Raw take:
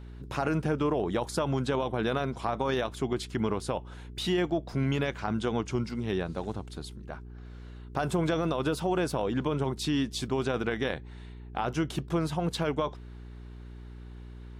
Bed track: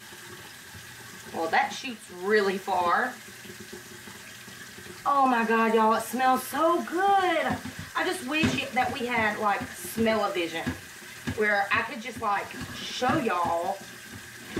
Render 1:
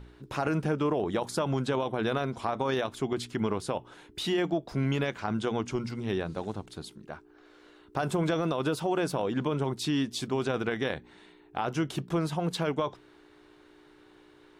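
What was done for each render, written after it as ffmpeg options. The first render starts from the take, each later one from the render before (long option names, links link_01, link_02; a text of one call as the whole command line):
ffmpeg -i in.wav -af "bandreject=frequency=60:width_type=h:width=4,bandreject=frequency=120:width_type=h:width=4,bandreject=frequency=180:width_type=h:width=4,bandreject=frequency=240:width_type=h:width=4" out.wav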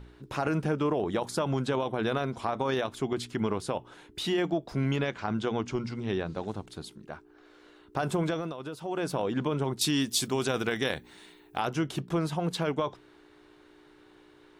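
ffmpeg -i in.wav -filter_complex "[0:a]asettb=1/sr,asplit=3[link_01][link_02][link_03];[link_01]atrim=end=4.964[link_04];[link_02]atrim=start=4.96:end=6.48,asetpts=PTS-STARTPTS,afade=type=in:duration=0.004:curve=qsin,afade=type=out:start_time=1.516:duration=0.004:curve=qsin,lowpass=6900[link_05];[link_03]atrim=start=6.476[link_06];[link_04][link_05]acrossfade=duration=0.004:curve1=hsin:curve2=qsin[link_07];[link_07][link_06]acrossfade=duration=0.004:curve1=qsin:curve2=hsin,asettb=1/sr,asplit=3[link_08][link_09][link_10];[link_08]atrim=end=9.814[link_11];[link_09]atrim=start=9.81:end=11.68,asetpts=PTS-STARTPTS,afade=type=in:duration=0.004:curve=qsin,afade=type=out:start_time=1.866:duration=0.004:curve=qsin,aemphasis=mode=production:type=75kf[link_12];[link_10]atrim=start=11.676[link_13];[link_11][link_12]acrossfade=duration=0.004:curve1=hsin:curve2=qsin[link_14];[link_14][link_13]acrossfade=duration=0.004:curve1=qsin:curve2=hsin,asplit=3[link_15][link_16][link_17];[link_15]atrim=end=8.56,asetpts=PTS-STARTPTS,afade=type=out:start_time=8.18:duration=0.38:silence=0.316228[link_18];[link_16]atrim=start=8.56:end=8.78,asetpts=PTS-STARTPTS,volume=-10dB[link_19];[link_17]atrim=start=8.78,asetpts=PTS-STARTPTS,afade=type=in:duration=0.38:silence=0.316228[link_20];[link_18][link_19][link_20]concat=n=3:v=0:a=1" out.wav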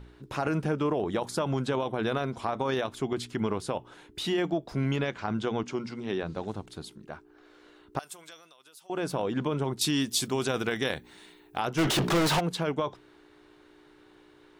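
ffmpeg -i in.wav -filter_complex "[0:a]asettb=1/sr,asplit=3[link_01][link_02][link_03];[link_01]atrim=end=5.634[link_04];[link_02]atrim=start=5.63:end=6.23,asetpts=PTS-STARTPTS,afade=type=in:duration=0.004:curve=qsin,afade=type=out:start_time=0.596:duration=0.004:curve=qsin,highpass=180[link_05];[link_03]atrim=start=6.226[link_06];[link_04][link_05]acrossfade=duration=0.004:curve1=hsin:curve2=qsin[link_07];[link_07][link_06]acrossfade=duration=0.004:curve1=qsin:curve2=hsin,asettb=1/sr,asplit=3[link_08][link_09][link_10];[link_08]atrim=end=7.994[link_11];[link_09]atrim=start=7.99:end=8.9,asetpts=PTS-STARTPTS,afade=type=in:duration=0.004:curve=qsin,afade=type=out:start_time=0.906:duration=0.004:curve=qsin,aderivative[link_12];[link_10]atrim=start=8.896[link_13];[link_11][link_12]acrossfade=duration=0.004:curve1=hsin:curve2=qsin[link_14];[link_14][link_13]acrossfade=duration=0.004:curve1=qsin:curve2=hsin,asplit=3[link_15][link_16][link_17];[link_15]afade=type=out:start_time=11.77:duration=0.02[link_18];[link_16]asplit=2[link_19][link_20];[link_20]highpass=frequency=720:poles=1,volume=39dB,asoftclip=type=tanh:threshold=-18dB[link_21];[link_19][link_21]amix=inputs=2:normalize=0,lowpass=frequency=5400:poles=1,volume=-6dB,afade=type=in:start_time=11.77:duration=0.02,afade=type=out:start_time=12.39:duration=0.02[link_22];[link_17]afade=type=in:start_time=12.39:duration=0.02[link_23];[link_18][link_22][link_23]amix=inputs=3:normalize=0" out.wav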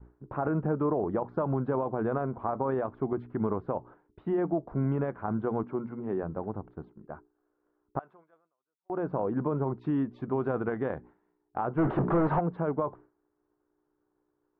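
ffmpeg -i in.wav -af "lowpass=frequency=1300:width=0.5412,lowpass=frequency=1300:width=1.3066,agate=range=-33dB:threshold=-44dB:ratio=3:detection=peak" out.wav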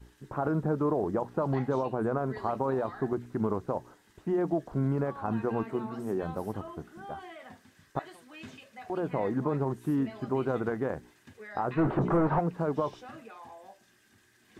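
ffmpeg -i in.wav -i bed.wav -filter_complex "[1:a]volume=-21.5dB[link_01];[0:a][link_01]amix=inputs=2:normalize=0" out.wav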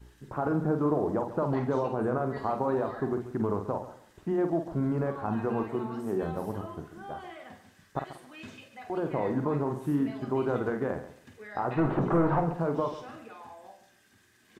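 ffmpeg -i in.wav -filter_complex "[0:a]asplit=2[link_01][link_02];[link_02]adelay=48,volume=-7.5dB[link_03];[link_01][link_03]amix=inputs=2:normalize=0,aecho=1:1:137|274|411:0.211|0.0486|0.0112" out.wav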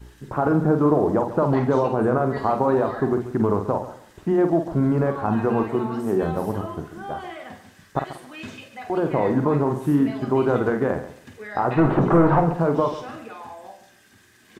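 ffmpeg -i in.wav -af "volume=8.5dB" out.wav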